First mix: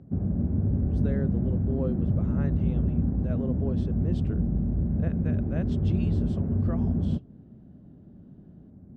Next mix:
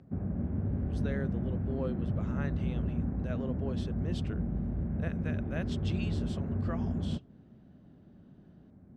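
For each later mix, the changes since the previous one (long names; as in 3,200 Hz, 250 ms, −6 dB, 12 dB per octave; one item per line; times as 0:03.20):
master: add tilt shelving filter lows −7.5 dB, about 860 Hz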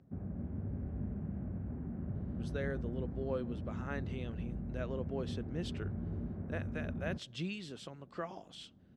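speech: entry +1.50 s
background −7.5 dB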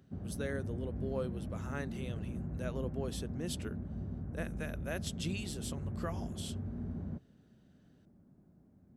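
speech: entry −2.15 s
master: remove low-pass filter 3,800 Hz 12 dB per octave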